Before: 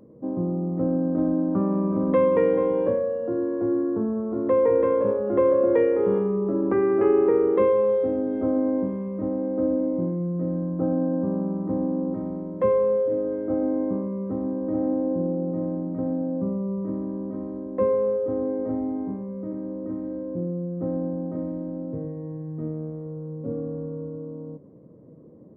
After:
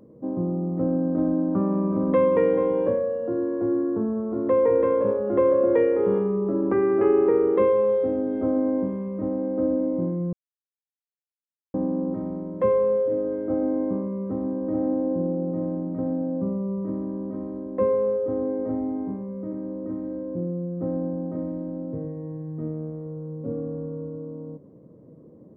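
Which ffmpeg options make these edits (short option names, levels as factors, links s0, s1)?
-filter_complex "[0:a]asplit=3[s0][s1][s2];[s0]atrim=end=10.33,asetpts=PTS-STARTPTS,afade=t=out:st=10.326:d=0.004:c=hsin[s3];[s1]atrim=start=10.33:end=11.74,asetpts=PTS-STARTPTS,volume=0[s4];[s2]atrim=start=11.74,asetpts=PTS-STARTPTS,afade=t=in:d=0.004:c=hsin[s5];[s3][s4][s5]concat=n=3:v=0:a=1"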